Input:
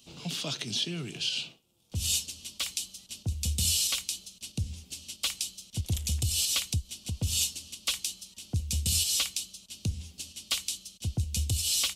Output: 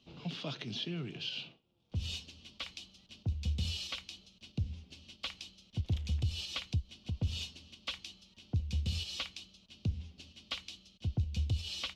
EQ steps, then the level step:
high-frequency loss of the air 260 metres
−2.5 dB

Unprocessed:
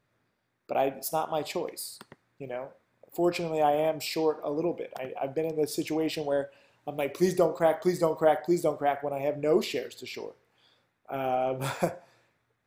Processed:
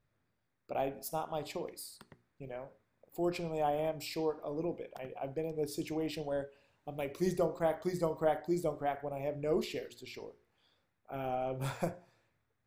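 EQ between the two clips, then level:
low-shelf EQ 65 Hz +9.5 dB
low-shelf EQ 150 Hz +8.5 dB
mains-hum notches 60/120/180/240/300/360/420 Hz
−8.5 dB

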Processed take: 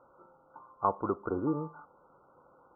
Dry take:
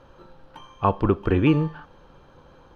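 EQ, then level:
high-pass filter 630 Hz 6 dB per octave
linear-phase brick-wall low-pass 1,500 Hz
−4.5 dB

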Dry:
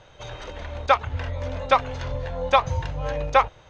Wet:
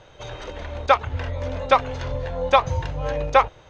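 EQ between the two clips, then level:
parametric band 370 Hz +3.5 dB 1.1 octaves
+1.0 dB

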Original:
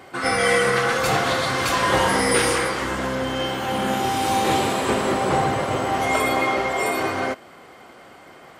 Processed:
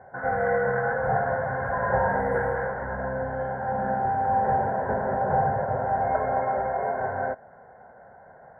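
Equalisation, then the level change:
elliptic low-pass filter 1,600 Hz, stop band 40 dB
phaser with its sweep stopped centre 1,200 Hz, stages 6
0.0 dB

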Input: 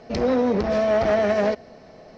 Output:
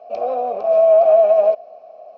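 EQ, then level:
formant filter a
parametric band 600 Hz +14.5 dB 0.8 octaves
high-shelf EQ 4,300 Hz +10 dB
+1.5 dB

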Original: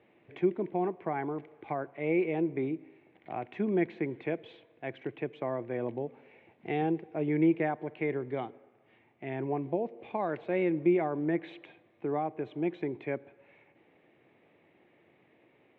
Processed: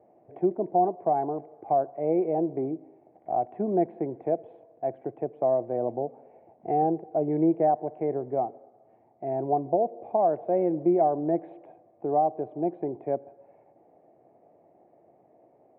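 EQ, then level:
low-pass with resonance 700 Hz, resonance Q 4.9
0.0 dB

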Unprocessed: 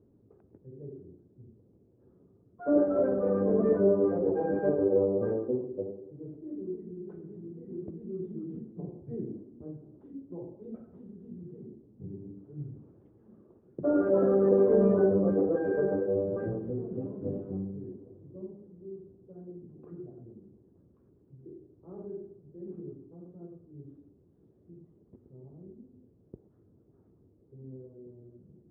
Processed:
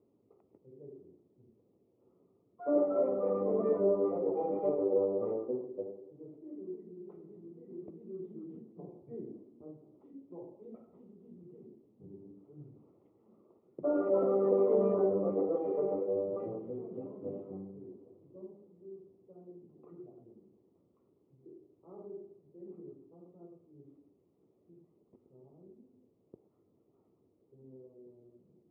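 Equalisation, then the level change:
high-pass filter 880 Hz 6 dB per octave
Butterworth band-reject 1,600 Hz, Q 2.7
high-frequency loss of the air 280 metres
+3.5 dB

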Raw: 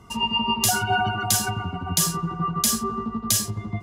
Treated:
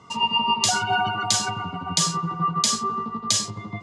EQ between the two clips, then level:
loudspeaker in its box 200–6,900 Hz, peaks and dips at 230 Hz −9 dB, 370 Hz −10 dB, 710 Hz −6 dB, 1,600 Hz −8 dB, 2,700 Hz −4 dB, 5,700 Hz −4 dB
+5.5 dB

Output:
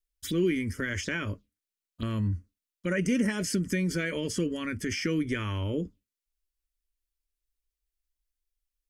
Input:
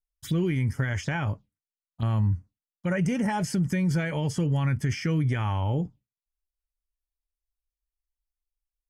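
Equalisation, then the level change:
phaser with its sweep stopped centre 330 Hz, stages 4
+3.5 dB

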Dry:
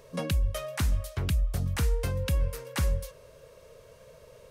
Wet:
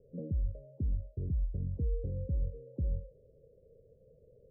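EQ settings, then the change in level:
Butterworth low-pass 510 Hz 48 dB per octave
−6.0 dB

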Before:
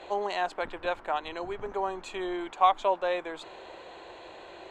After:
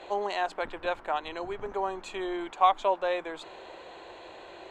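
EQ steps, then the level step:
mains-hum notches 60/120/180 Hz
0.0 dB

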